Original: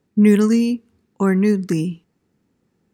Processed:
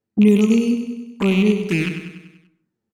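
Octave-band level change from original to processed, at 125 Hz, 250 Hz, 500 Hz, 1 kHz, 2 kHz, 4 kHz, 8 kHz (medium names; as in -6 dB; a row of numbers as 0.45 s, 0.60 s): 0.0 dB, 0.0 dB, -0.5 dB, -4.0 dB, +4.0 dB, +6.5 dB, -1.0 dB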